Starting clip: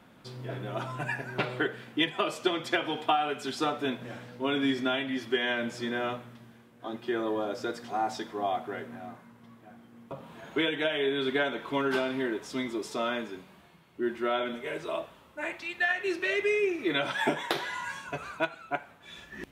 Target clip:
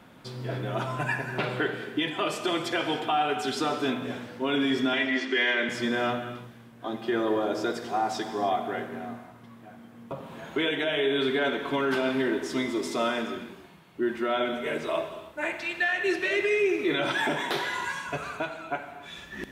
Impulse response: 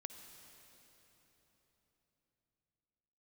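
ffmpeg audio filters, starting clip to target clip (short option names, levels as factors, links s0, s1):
-filter_complex "[0:a]alimiter=limit=0.0794:level=0:latency=1:release=21,asettb=1/sr,asplit=3[s0][s1][s2];[s0]atrim=end=4.934[s3];[s1]atrim=start=4.93:end=5.69,asetpts=PTS-STARTPTS,afade=t=in:d=0.004:c=qsin,afade=t=out:st=0.756:d=0.004:c=qsin,highpass=f=260:w=0.5412,highpass=f=260:w=1.3066,equalizer=f=760:t=q:w=4:g=-4,equalizer=f=2000:t=q:w=4:g=9,equalizer=f=4300:t=q:w=4:g=4,lowpass=f=7900:w=0.5412,lowpass=f=7900:w=1.3066[s4];[s2]atrim=start=5.686[s5];[s3][s4]acrossfade=d=0.004:c1=hsin:c2=qsin[s6];[s6][s5]acrossfade=d=0.004:c1=qsin:c2=hsin[s7];[1:a]atrim=start_sample=2205,afade=t=out:st=0.37:d=0.01,atrim=end_sample=16758[s8];[s7][s8]afir=irnorm=-1:irlink=0,volume=2.82"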